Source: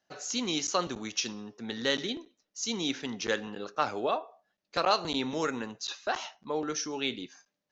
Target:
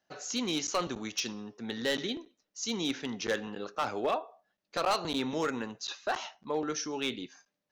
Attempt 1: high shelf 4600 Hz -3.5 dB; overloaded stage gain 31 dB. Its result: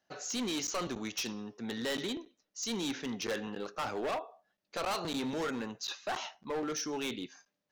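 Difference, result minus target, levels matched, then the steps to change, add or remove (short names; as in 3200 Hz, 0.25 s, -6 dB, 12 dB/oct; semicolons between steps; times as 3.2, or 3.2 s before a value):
overloaded stage: distortion +7 dB
change: overloaded stage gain 23 dB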